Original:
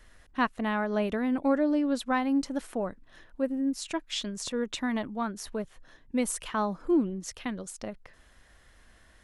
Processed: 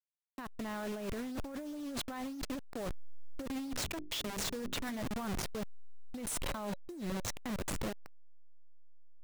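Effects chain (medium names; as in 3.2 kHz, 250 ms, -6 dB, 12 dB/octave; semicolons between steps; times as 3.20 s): send-on-delta sampling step -32.5 dBFS; 3.56–4.98 s: hum notches 50/100/150/200/250/300/350/400 Hz; compressor with a negative ratio -36 dBFS, ratio -1; 6.38–7.31 s: small resonant body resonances 560/3900 Hz, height 10 dB; saturation -32.5 dBFS, distortion -13 dB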